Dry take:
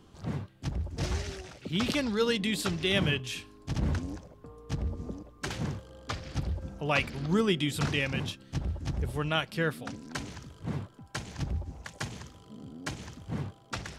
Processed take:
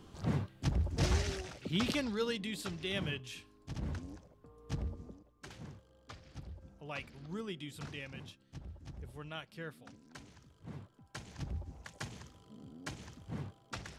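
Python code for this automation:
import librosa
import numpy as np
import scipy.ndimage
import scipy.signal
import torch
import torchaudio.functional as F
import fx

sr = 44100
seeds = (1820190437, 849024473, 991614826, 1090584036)

y = fx.gain(x, sr, db=fx.line((1.35, 1.0), (2.47, -10.0), (4.53, -10.0), (4.77, -4.0), (5.21, -15.5), (10.33, -15.5), (11.58, -7.0)))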